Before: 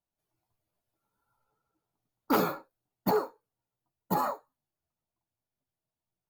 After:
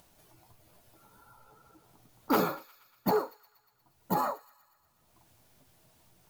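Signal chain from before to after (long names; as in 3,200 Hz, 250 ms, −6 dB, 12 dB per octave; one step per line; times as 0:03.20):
in parallel at +2 dB: upward compression, threshold −32 dBFS
on the sum: delay with a high-pass on its return 119 ms, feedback 65%, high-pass 2,100 Hz, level −17.5 dB
level −7.5 dB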